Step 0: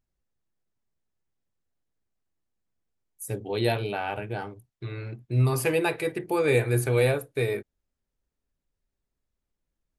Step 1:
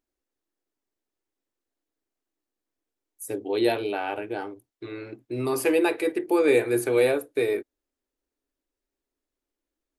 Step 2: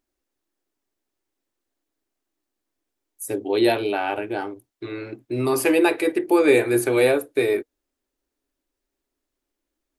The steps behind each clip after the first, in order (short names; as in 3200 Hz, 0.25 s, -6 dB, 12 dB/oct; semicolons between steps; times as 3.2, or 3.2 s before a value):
resonant low shelf 220 Hz -10 dB, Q 3
notch 470 Hz, Q 12; gain +5 dB